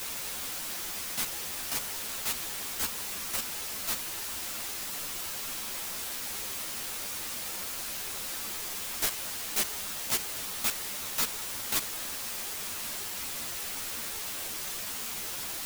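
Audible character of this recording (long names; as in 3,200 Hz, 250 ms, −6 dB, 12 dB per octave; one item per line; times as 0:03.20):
chopped level 8.6 Hz, duty 90%
a quantiser's noise floor 6 bits, dither triangular
a shimmering, thickened sound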